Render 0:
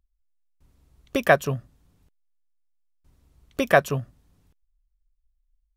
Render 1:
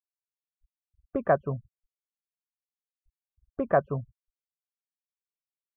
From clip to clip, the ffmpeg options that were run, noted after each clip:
-af "afftfilt=real='re*gte(hypot(re,im),0.02)':imag='im*gte(hypot(re,im),0.02)':win_size=1024:overlap=0.75,lowpass=f=1.3k:w=0.5412,lowpass=f=1.3k:w=1.3066,volume=-4.5dB"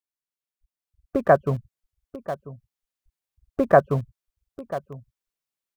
-filter_complex "[0:a]asplit=2[a][b];[b]adelay=991.3,volume=-14dB,highshelf=f=4k:g=-22.3[c];[a][c]amix=inputs=2:normalize=0,asplit=2[d][e];[e]aeval=exprs='val(0)*gte(abs(val(0)),0.0224)':c=same,volume=-11dB[f];[d][f]amix=inputs=2:normalize=0,dynaudnorm=f=300:g=7:m=6.5dB"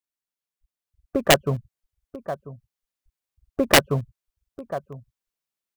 -af "aeval=exprs='(mod(2.11*val(0)+1,2)-1)/2.11':c=same"

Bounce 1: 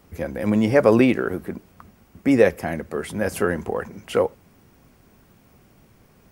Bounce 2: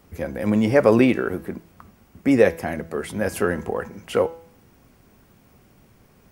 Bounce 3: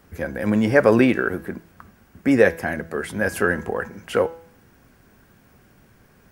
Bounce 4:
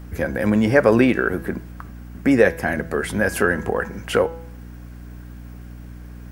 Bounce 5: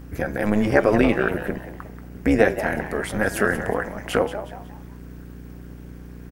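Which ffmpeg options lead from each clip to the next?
-af "bandreject=f=165.3:t=h:w=4,bandreject=f=330.6:t=h:w=4,bandreject=f=495.9:t=h:w=4,bandreject=f=661.2:t=h:w=4,bandreject=f=826.5:t=h:w=4,bandreject=f=991.8:t=h:w=4,bandreject=f=1.1571k:t=h:w=4,bandreject=f=1.3224k:t=h:w=4,bandreject=f=1.4877k:t=h:w=4,bandreject=f=1.653k:t=h:w=4,bandreject=f=1.8183k:t=h:w=4,bandreject=f=1.9836k:t=h:w=4,bandreject=f=2.1489k:t=h:w=4,bandreject=f=2.3142k:t=h:w=4,bandreject=f=2.4795k:t=h:w=4,bandreject=f=2.6448k:t=h:w=4,bandreject=f=2.8101k:t=h:w=4,bandreject=f=2.9754k:t=h:w=4,bandreject=f=3.1407k:t=h:w=4,bandreject=f=3.306k:t=h:w=4,bandreject=f=3.4713k:t=h:w=4,bandreject=f=3.6366k:t=h:w=4,bandreject=f=3.8019k:t=h:w=4,bandreject=f=3.9672k:t=h:w=4,bandreject=f=4.1325k:t=h:w=4,bandreject=f=4.2978k:t=h:w=4,bandreject=f=4.4631k:t=h:w=4,bandreject=f=4.6284k:t=h:w=4,bandreject=f=4.7937k:t=h:w=4,bandreject=f=4.959k:t=h:w=4,bandreject=f=5.1243k:t=h:w=4,bandreject=f=5.2896k:t=h:w=4,bandreject=f=5.4549k:t=h:w=4,bandreject=f=5.6202k:t=h:w=4,bandreject=f=5.7855k:t=h:w=4,bandreject=f=5.9508k:t=h:w=4,bandreject=f=6.1161k:t=h:w=4,bandreject=f=6.2814k:t=h:w=4,bandreject=f=6.4467k:t=h:w=4,bandreject=f=6.612k:t=h:w=4"
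-af "equalizer=f=1.6k:w=4:g=8.5"
-filter_complex "[0:a]asplit=2[a][b];[b]acompressor=threshold=-25dB:ratio=6,volume=3dB[c];[a][c]amix=inputs=2:normalize=0,aeval=exprs='val(0)+0.02*(sin(2*PI*60*n/s)+sin(2*PI*2*60*n/s)/2+sin(2*PI*3*60*n/s)/3+sin(2*PI*4*60*n/s)/4+sin(2*PI*5*60*n/s)/5)':c=same,volume=-2dB"
-filter_complex "[0:a]asplit=5[a][b][c][d][e];[b]adelay=182,afreqshift=120,volume=-11.5dB[f];[c]adelay=364,afreqshift=240,volume=-20.6dB[g];[d]adelay=546,afreqshift=360,volume=-29.7dB[h];[e]adelay=728,afreqshift=480,volume=-38.9dB[i];[a][f][g][h][i]amix=inputs=5:normalize=0,tremolo=f=210:d=0.788,volume=1dB"

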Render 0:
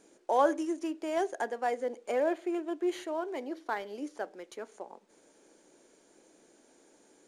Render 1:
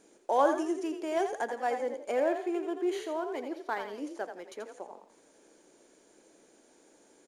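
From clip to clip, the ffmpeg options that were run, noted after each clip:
-filter_complex "[0:a]asplit=5[a][b][c][d][e];[b]adelay=84,afreqshift=38,volume=-8dB[f];[c]adelay=168,afreqshift=76,volume=-17.9dB[g];[d]adelay=252,afreqshift=114,volume=-27.8dB[h];[e]adelay=336,afreqshift=152,volume=-37.7dB[i];[a][f][g][h][i]amix=inputs=5:normalize=0"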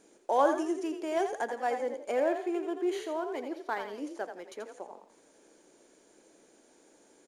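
-af anull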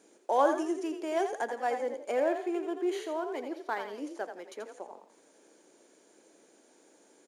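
-af "highpass=180"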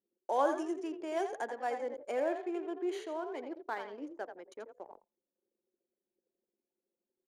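-af "anlmdn=0.0398,volume=-4.5dB"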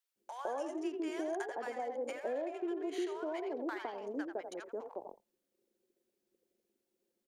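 -filter_complex "[0:a]acompressor=threshold=-41dB:ratio=6,acrossover=split=930[a][b];[a]adelay=160[c];[c][b]amix=inputs=2:normalize=0,volume=7dB"

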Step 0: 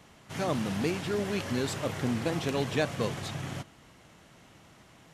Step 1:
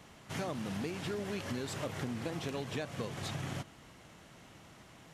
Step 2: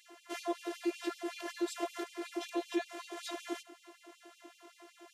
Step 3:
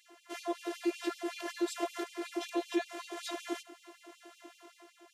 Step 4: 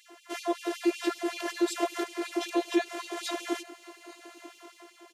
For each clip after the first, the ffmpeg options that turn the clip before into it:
-af "acompressor=threshold=-34dB:ratio=10"
-af "equalizer=f=210:w=0.44:g=12,afftfilt=real='hypot(re,im)*cos(PI*b)':imag='0':win_size=512:overlap=0.75,afftfilt=real='re*gte(b*sr/1024,270*pow(2500/270,0.5+0.5*sin(2*PI*5.3*pts/sr)))':imag='im*gte(b*sr/1024,270*pow(2500/270,0.5+0.5*sin(2*PI*5.3*pts/sr)))':win_size=1024:overlap=0.75,volume=2.5dB"
-af "dynaudnorm=f=110:g=9:m=4.5dB,volume=-2.5dB"
-af "aecho=1:1:848|1696|2544:0.0668|0.0261|0.0102,volume=6dB"

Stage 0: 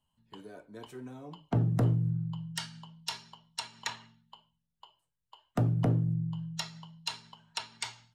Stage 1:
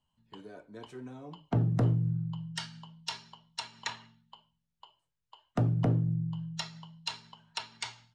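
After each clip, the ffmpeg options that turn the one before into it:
-af "lowpass=7.1k"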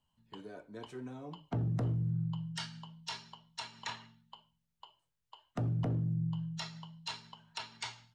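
-af "alimiter=level_in=3.5dB:limit=-24dB:level=0:latency=1:release=16,volume=-3.5dB"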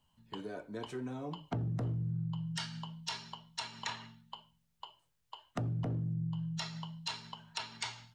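-af "acompressor=threshold=-43dB:ratio=2.5,volume=6dB"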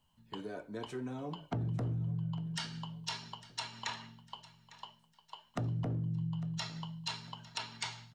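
-af "aecho=1:1:853|1706|2559:0.119|0.0475|0.019"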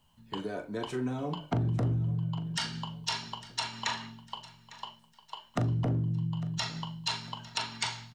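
-filter_complex "[0:a]asplit=2[a][b];[b]adelay=40,volume=-10dB[c];[a][c]amix=inputs=2:normalize=0,volume=6.5dB"

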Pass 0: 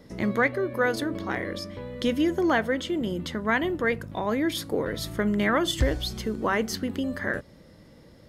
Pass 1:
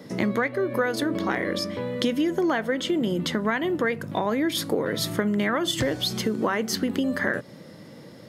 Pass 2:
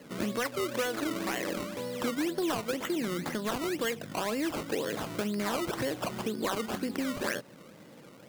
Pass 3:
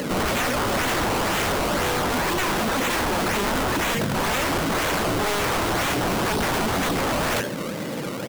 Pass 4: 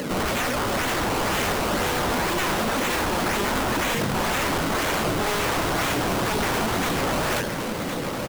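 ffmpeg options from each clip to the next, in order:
-af "highpass=f=120:w=0.5412,highpass=f=120:w=1.3066,acompressor=threshold=-29dB:ratio=6,volume=8dB"
-af "acrusher=samples=18:mix=1:aa=0.000001:lfo=1:lforange=18:lforate=2,lowshelf=f=120:g=-11.5,asoftclip=type=tanh:threshold=-15.5dB,volume=-5dB"
-af "aecho=1:1:82:0.158,aeval=exprs='0.1*sin(PI/2*8.91*val(0)/0.1)':c=same,acompressor=mode=upward:threshold=-30dB:ratio=2.5"
-af "aecho=1:1:1063:0.447,volume=-1.5dB"

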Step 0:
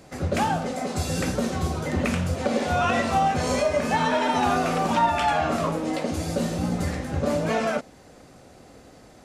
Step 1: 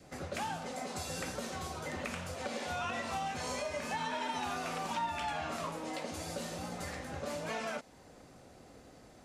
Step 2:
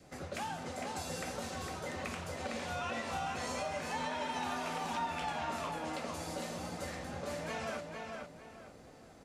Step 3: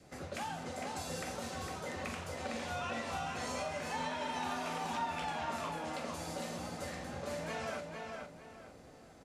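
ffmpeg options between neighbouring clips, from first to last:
-filter_complex "[0:a]adynamicequalizer=threshold=0.0126:dfrequency=940:dqfactor=4.9:tfrequency=940:tqfactor=4.9:attack=5:release=100:ratio=0.375:range=3:mode=boostabove:tftype=bell,acrossover=split=500|1600[a][b][c];[a]acompressor=threshold=-38dB:ratio=4[d];[b]acompressor=threshold=-34dB:ratio=4[e];[c]acompressor=threshold=-33dB:ratio=4[f];[d][e][f]amix=inputs=3:normalize=0,volume=-7dB"
-filter_complex "[0:a]asplit=2[a][b];[b]adelay=456,lowpass=f=4k:p=1,volume=-4dB,asplit=2[c][d];[d]adelay=456,lowpass=f=4k:p=1,volume=0.32,asplit=2[e][f];[f]adelay=456,lowpass=f=4k:p=1,volume=0.32,asplit=2[g][h];[h]adelay=456,lowpass=f=4k:p=1,volume=0.32[i];[a][c][e][g][i]amix=inputs=5:normalize=0,volume=-2dB"
-filter_complex "[0:a]asplit=2[a][b];[b]adelay=43,volume=-10.5dB[c];[a][c]amix=inputs=2:normalize=0,aresample=32000,aresample=44100,volume=-1dB"

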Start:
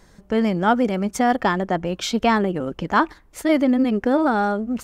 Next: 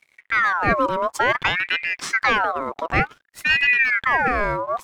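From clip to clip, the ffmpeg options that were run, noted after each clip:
-af "aeval=exprs='sgn(val(0))*max(abs(val(0))-0.00335,0)':c=same,lowshelf=f=200:g=8,aeval=exprs='val(0)*sin(2*PI*1500*n/s+1500*0.5/0.55*sin(2*PI*0.55*n/s))':c=same"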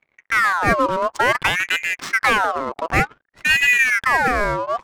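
-af "adynamicsmooth=sensitivity=5.5:basefreq=1.4k,volume=2dB"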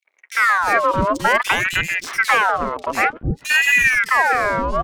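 -filter_complex "[0:a]acrossover=split=370|3300[a][b][c];[b]adelay=50[d];[a]adelay=310[e];[e][d][c]amix=inputs=3:normalize=0,volume=2dB"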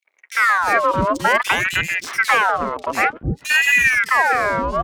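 -af "highpass=46"

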